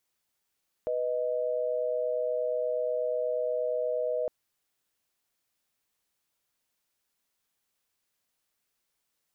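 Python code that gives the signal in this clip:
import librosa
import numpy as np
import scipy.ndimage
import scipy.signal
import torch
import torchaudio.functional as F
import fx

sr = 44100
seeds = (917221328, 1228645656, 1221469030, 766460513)

y = fx.chord(sr, length_s=3.41, notes=(71, 75), wave='sine', level_db=-29.5)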